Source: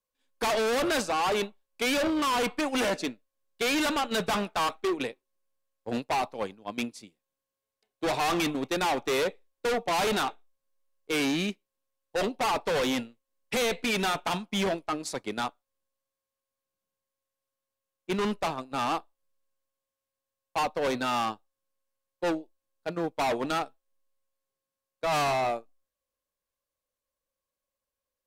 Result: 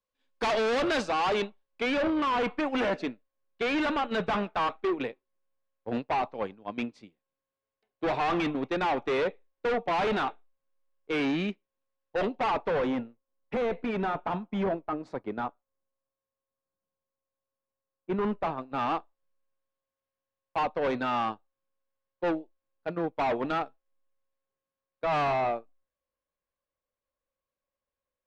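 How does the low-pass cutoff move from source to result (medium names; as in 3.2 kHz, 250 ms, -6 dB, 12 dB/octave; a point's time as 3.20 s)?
1.29 s 4.4 kHz
1.92 s 2.5 kHz
12.50 s 2.5 kHz
12.98 s 1.3 kHz
18.13 s 1.3 kHz
18.84 s 2.5 kHz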